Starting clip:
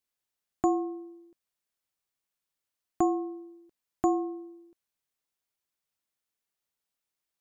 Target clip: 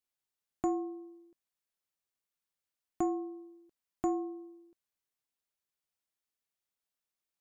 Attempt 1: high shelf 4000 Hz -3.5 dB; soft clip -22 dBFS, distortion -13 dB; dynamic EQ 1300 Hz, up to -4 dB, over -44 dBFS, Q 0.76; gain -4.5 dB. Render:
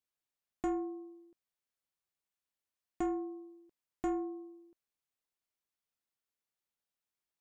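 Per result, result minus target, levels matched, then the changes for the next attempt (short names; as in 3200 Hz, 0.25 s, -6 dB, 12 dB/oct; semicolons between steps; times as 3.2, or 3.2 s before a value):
soft clip: distortion +14 dB; 8000 Hz band -3.5 dB
change: soft clip -12.5 dBFS, distortion -27 dB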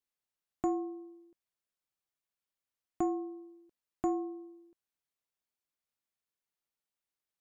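8000 Hz band -2.5 dB
remove: high shelf 4000 Hz -3.5 dB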